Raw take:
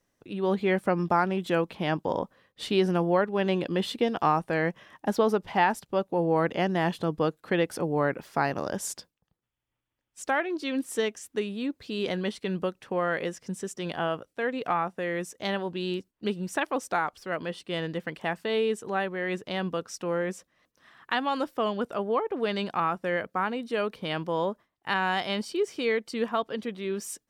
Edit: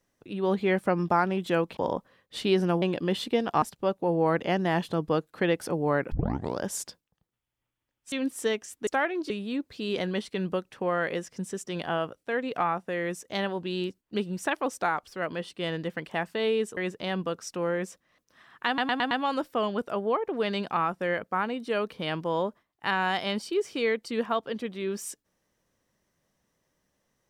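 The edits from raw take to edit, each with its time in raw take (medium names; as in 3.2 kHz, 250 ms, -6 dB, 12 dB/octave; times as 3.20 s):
1.77–2.03 s: delete
3.08–3.50 s: delete
4.30–5.72 s: delete
8.22 s: tape start 0.47 s
10.22–10.65 s: move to 11.40 s
18.87–19.24 s: delete
21.14 s: stutter 0.11 s, 5 plays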